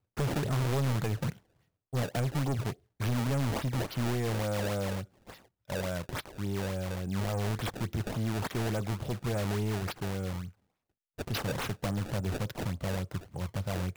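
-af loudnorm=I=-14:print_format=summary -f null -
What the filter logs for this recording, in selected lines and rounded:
Input Integrated:    -33.6 LUFS
Input True Peak:     -24.5 dBTP
Input LRA:             2.6 LU
Input Threshold:     -43.8 LUFS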